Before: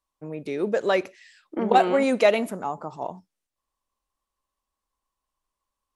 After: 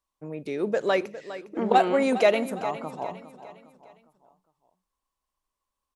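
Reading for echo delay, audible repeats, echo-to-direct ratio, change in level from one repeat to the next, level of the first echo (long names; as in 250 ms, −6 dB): 407 ms, 3, −13.0 dB, −7.5 dB, −14.0 dB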